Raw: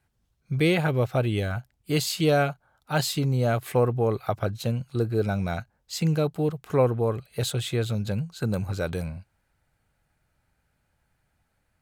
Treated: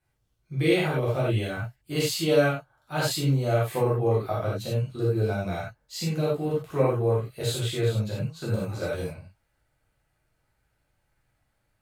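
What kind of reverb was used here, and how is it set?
reverb whose tail is shaped and stops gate 120 ms flat, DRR −8 dB
level −9 dB

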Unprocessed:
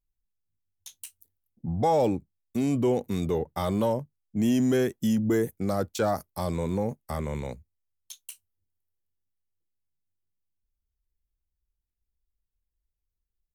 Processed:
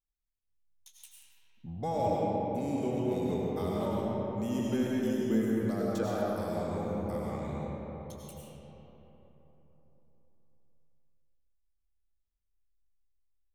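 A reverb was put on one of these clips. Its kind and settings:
comb and all-pass reverb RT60 4.1 s, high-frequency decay 0.45×, pre-delay 60 ms, DRR −5.5 dB
level −11.5 dB

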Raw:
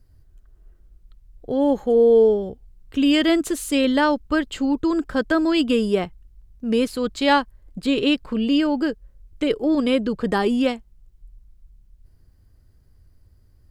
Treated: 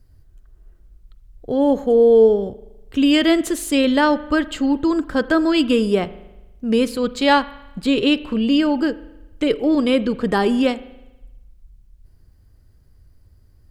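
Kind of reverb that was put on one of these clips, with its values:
spring reverb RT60 1 s, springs 40 ms, chirp 40 ms, DRR 16 dB
level +2.5 dB

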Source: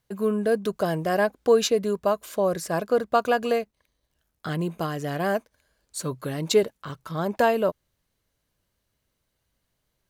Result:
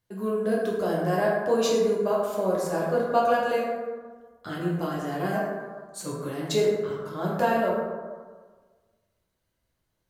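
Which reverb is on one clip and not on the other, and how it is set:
dense smooth reverb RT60 1.5 s, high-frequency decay 0.4×, DRR −5.5 dB
level −8 dB

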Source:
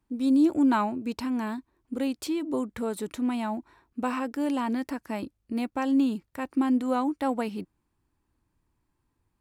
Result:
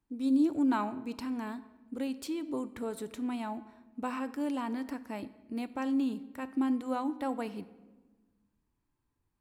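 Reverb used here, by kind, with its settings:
rectangular room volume 820 cubic metres, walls mixed, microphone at 0.34 metres
level −6.5 dB

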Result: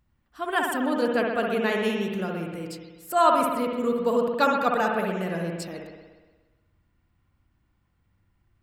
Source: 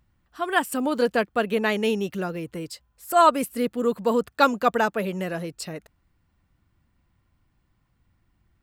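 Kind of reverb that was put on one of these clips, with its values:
spring reverb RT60 1.3 s, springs 59 ms, chirp 80 ms, DRR 0.5 dB
level −4 dB

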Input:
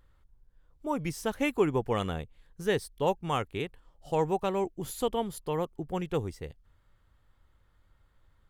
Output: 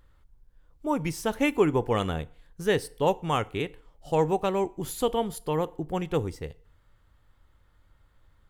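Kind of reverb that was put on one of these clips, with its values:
feedback delay network reverb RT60 0.53 s, low-frequency decay 0.8×, high-frequency decay 0.8×, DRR 16.5 dB
level +3.5 dB

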